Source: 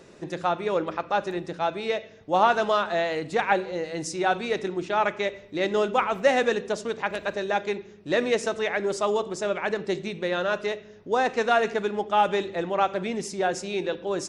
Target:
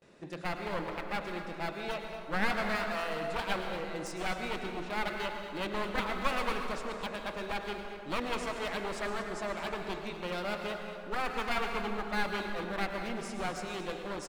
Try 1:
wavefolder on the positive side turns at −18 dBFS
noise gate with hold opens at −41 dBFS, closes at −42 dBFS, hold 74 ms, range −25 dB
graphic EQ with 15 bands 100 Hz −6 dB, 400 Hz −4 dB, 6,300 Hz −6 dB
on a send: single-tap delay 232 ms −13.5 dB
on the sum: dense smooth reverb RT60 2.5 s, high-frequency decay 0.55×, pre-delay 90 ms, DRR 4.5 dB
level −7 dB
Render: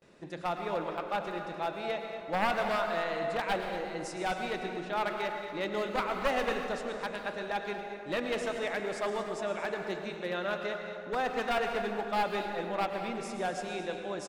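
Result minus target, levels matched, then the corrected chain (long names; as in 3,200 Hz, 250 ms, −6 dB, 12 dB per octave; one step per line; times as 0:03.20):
wavefolder on the positive side: distortion −12 dB
wavefolder on the positive side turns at −26.5 dBFS
noise gate with hold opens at −41 dBFS, closes at −42 dBFS, hold 74 ms, range −25 dB
graphic EQ with 15 bands 100 Hz −6 dB, 400 Hz −4 dB, 6,300 Hz −6 dB
on a send: single-tap delay 232 ms −13.5 dB
on the sum: dense smooth reverb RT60 2.5 s, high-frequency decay 0.55×, pre-delay 90 ms, DRR 4.5 dB
level −7 dB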